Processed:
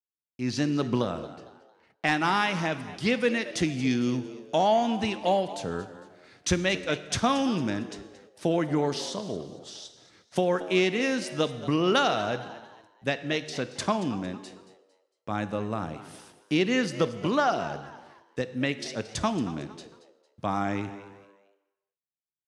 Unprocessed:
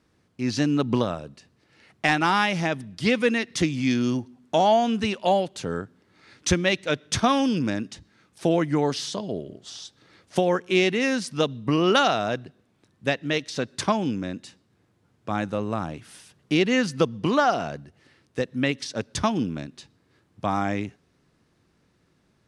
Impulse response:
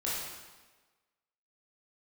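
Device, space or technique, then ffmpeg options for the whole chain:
saturated reverb return: -filter_complex "[0:a]asettb=1/sr,asplit=3[link_01][link_02][link_03];[link_01]atrim=end=1.194[link_04];[link_02]atrim=start=1.19:end=2.07,asetpts=PTS-STARTPTS,afade=type=in:duration=0.004:curve=qsin,afade=type=out:start_time=0.876:duration=0.004:curve=qsin,aemphasis=mode=reproduction:type=50kf[link_05];[link_03]atrim=start=2.066[link_06];[link_04][link_05]acrossfade=duration=0.004:curve1=hsin:curve2=qsin[link_07];[link_07][link_06]acrossfade=duration=0.004:curve1=qsin:curve2=hsin,asplit=2[link_08][link_09];[1:a]atrim=start_sample=2205[link_10];[link_09][link_10]afir=irnorm=-1:irlink=0,asoftclip=type=tanh:threshold=-8.5dB,volume=-16dB[link_11];[link_08][link_11]amix=inputs=2:normalize=0,agate=range=-43dB:threshold=-54dB:ratio=16:detection=peak,asplit=4[link_12][link_13][link_14][link_15];[link_13]adelay=227,afreqshift=97,volume=-16dB[link_16];[link_14]adelay=454,afreqshift=194,volume=-25.1dB[link_17];[link_15]adelay=681,afreqshift=291,volume=-34.2dB[link_18];[link_12][link_16][link_17][link_18]amix=inputs=4:normalize=0,volume=-4.5dB"

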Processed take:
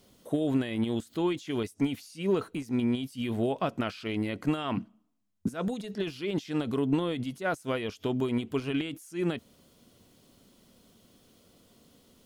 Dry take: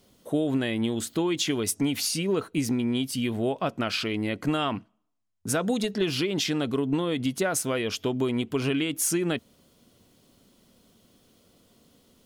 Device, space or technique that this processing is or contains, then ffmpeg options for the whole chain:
de-esser from a sidechain: -filter_complex "[0:a]asettb=1/sr,asplit=3[link_01][link_02][link_03];[link_01]atrim=end=4.774[link_04];[link_02]atrim=start=4.77:end=5.54,asetpts=PTS-STARTPTS,afade=type=in:duration=0.004:curve=qsin,afade=type=out:start_time=0.766:duration=0.004:curve=qsin,equalizer=frequency=220:width_type=o:width=1.1:gain=12[link_05];[link_03]atrim=start=5.536[link_06];[link_04][link_05]acrossfade=duration=0.004:curve1=hsin:curve2=qsin[link_07];[link_07][link_06]acrossfade=duration=0.004:curve1=qsin:curve2=hsin,asplit=2[link_08][link_09];[link_09]highpass=frequency=5000:width=0.5412,highpass=frequency=5000:width=1.3066,apad=whole_len=540548[link_10];[link_08][link_10]sidechaincompress=threshold=-55dB:ratio=4:attack=2.9:release=45"

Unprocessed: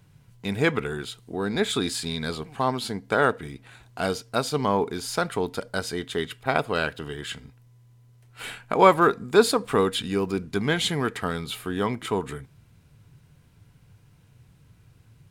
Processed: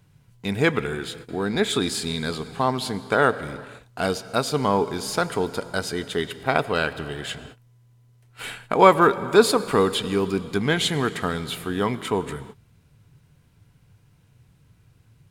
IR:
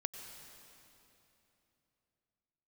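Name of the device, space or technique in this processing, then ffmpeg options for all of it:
keyed gated reverb: -filter_complex "[0:a]asplit=3[link_01][link_02][link_03];[1:a]atrim=start_sample=2205[link_04];[link_02][link_04]afir=irnorm=-1:irlink=0[link_05];[link_03]apad=whole_len=674986[link_06];[link_05][link_06]sidechaingate=range=-33dB:threshold=-47dB:ratio=16:detection=peak,volume=-4dB[link_07];[link_01][link_07]amix=inputs=2:normalize=0,volume=-1.5dB"

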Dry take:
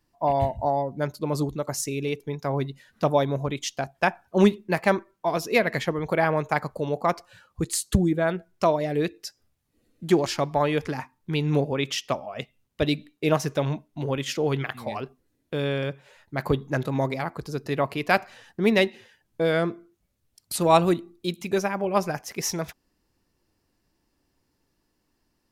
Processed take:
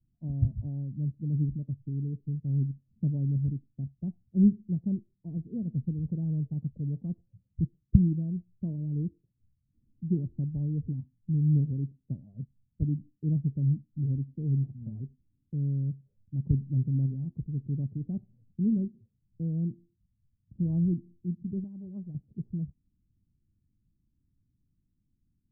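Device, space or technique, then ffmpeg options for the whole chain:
the neighbour's flat through the wall: -filter_complex "[0:a]lowpass=frequency=210:width=0.5412,lowpass=frequency=210:width=1.3066,equalizer=frequency=110:width_type=o:width=0.77:gain=4,asettb=1/sr,asplit=3[link_01][link_02][link_03];[link_01]atrim=end=21.644[link_04];[link_02]atrim=start=21.64:end=22.15,asetpts=PTS-STARTPTS,afade=type=in:duration=0.004:curve=qsin,afade=type=out:start_time=0.506:duration=0.004:curve=qsin,tiltshelf=frequency=970:gain=-8.5[link_05];[link_03]atrim=start=22.146[link_06];[link_04][link_05]acrossfade=duration=0.004:curve1=hsin:curve2=qsin[link_07];[link_07][link_06]acrossfade=duration=0.004:curve1=qsin:curve2=hsin,volume=1dB"

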